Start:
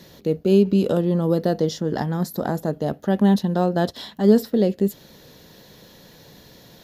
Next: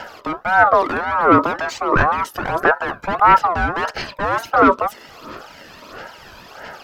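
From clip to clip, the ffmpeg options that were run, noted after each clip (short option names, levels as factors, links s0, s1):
-filter_complex "[0:a]asplit=2[s0][s1];[s1]highpass=f=720:p=1,volume=25.1,asoftclip=type=tanh:threshold=0.631[s2];[s0][s2]amix=inputs=2:normalize=0,lowpass=f=1100:p=1,volume=0.501,aphaser=in_gain=1:out_gain=1:delay=1.3:decay=0.65:speed=1.5:type=sinusoidal,aeval=exprs='val(0)*sin(2*PI*960*n/s+960*0.2/1.8*sin(2*PI*1.8*n/s))':c=same,volume=0.631"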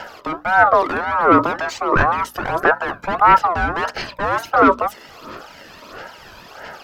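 -af "bandreject=f=60:t=h:w=6,bandreject=f=120:t=h:w=6,bandreject=f=180:t=h:w=6,bandreject=f=240:t=h:w=6,bandreject=f=300:t=h:w=6"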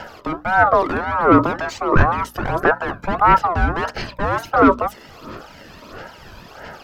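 -af "lowshelf=f=290:g=10.5,volume=0.75"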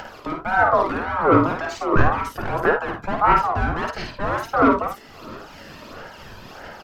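-af "acompressor=mode=upward:threshold=0.0316:ratio=2.5,flanger=delay=2.2:depth=7.8:regen=60:speed=1.8:shape=triangular,aecho=1:1:52|77:0.562|0.188"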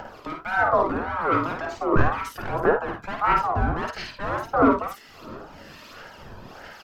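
-filter_complex "[0:a]acrossover=split=1300[s0][s1];[s0]aeval=exprs='val(0)*(1-0.7/2+0.7/2*cos(2*PI*1.1*n/s))':c=same[s2];[s1]aeval=exprs='val(0)*(1-0.7/2-0.7/2*cos(2*PI*1.1*n/s))':c=same[s3];[s2][s3]amix=inputs=2:normalize=0"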